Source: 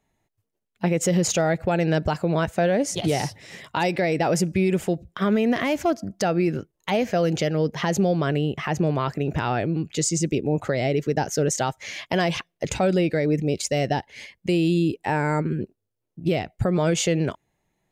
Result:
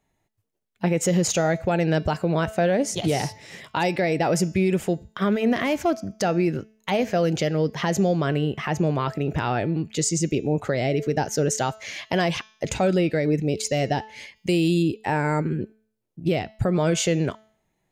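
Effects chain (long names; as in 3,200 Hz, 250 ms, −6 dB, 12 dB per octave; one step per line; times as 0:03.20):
hum removal 217.8 Hz, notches 33
0:14.36–0:14.83: high-shelf EQ 4,500 Hz +7.5 dB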